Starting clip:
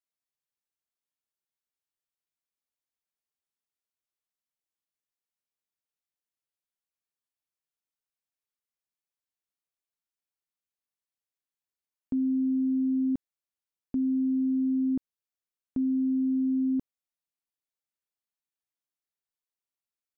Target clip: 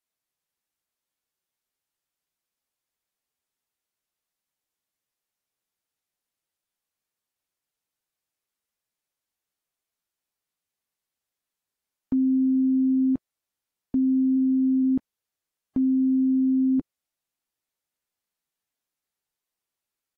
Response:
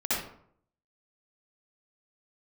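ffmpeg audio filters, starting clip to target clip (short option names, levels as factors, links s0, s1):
-filter_complex "[0:a]asplit=3[s0][s1][s2];[s0]afade=t=out:st=14.36:d=0.02[s3];[s1]asplit=2[s4][s5];[s5]adelay=18,volume=0.398[s6];[s4][s6]amix=inputs=2:normalize=0,afade=t=in:st=14.36:d=0.02,afade=t=out:st=14.82:d=0.02[s7];[s2]afade=t=in:st=14.82:d=0.02[s8];[s3][s7][s8]amix=inputs=3:normalize=0,volume=1.78" -ar 48000 -c:a aac -b:a 48k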